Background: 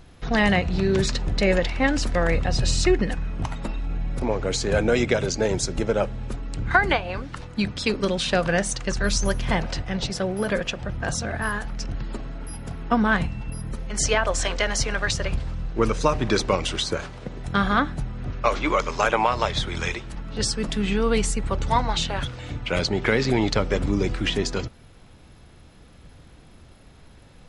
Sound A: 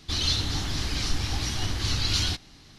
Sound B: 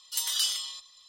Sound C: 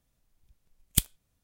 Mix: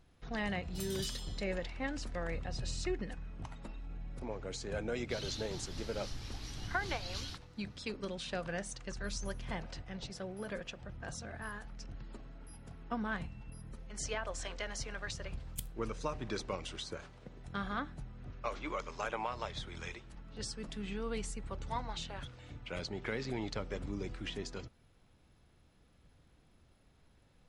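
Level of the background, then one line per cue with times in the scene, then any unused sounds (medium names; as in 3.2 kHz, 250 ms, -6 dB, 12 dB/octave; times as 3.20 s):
background -17 dB
0.63 s: add B -16 dB
5.01 s: add A -17.5 dB
14.61 s: add C -11.5 dB + peak limiter -11 dBFS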